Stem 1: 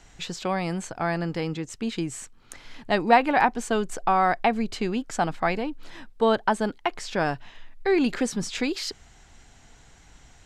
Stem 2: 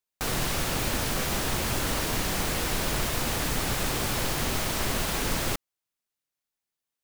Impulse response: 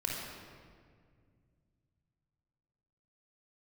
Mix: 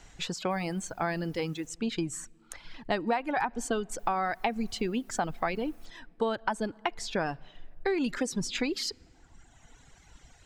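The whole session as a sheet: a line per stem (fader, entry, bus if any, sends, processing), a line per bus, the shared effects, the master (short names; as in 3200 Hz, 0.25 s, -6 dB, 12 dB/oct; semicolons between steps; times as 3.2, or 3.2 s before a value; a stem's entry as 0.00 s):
-1.0 dB, 0.00 s, send -21.5 dB, dry
-15.5 dB, 0.30 s, muted 1.7–3.99, no send, auto duck -12 dB, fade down 0.70 s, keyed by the first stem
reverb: on, RT60 2.0 s, pre-delay 26 ms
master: reverb removal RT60 1.4 s; compressor 8:1, threshold -25 dBFS, peak gain reduction 12.5 dB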